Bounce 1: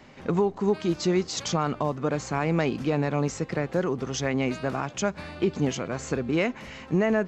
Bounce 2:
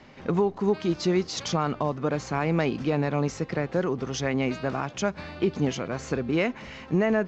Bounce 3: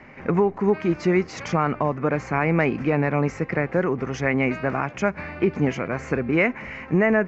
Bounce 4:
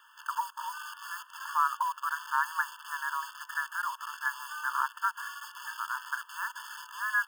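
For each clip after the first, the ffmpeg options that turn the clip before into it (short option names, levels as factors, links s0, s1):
-af "lowpass=f=6400:w=0.5412,lowpass=f=6400:w=1.3066"
-af "highshelf=f=2800:t=q:w=3:g=-8,volume=1.5"
-af "highpass=f=450:t=q:w=0.5412,highpass=f=450:t=q:w=1.307,lowpass=f=2100:t=q:w=0.5176,lowpass=f=2100:t=q:w=0.7071,lowpass=f=2100:t=q:w=1.932,afreqshift=-52,acrusher=bits=7:dc=4:mix=0:aa=0.000001,afftfilt=real='re*eq(mod(floor(b*sr/1024/890),2),1)':imag='im*eq(mod(floor(b*sr/1024/890),2),1)':win_size=1024:overlap=0.75"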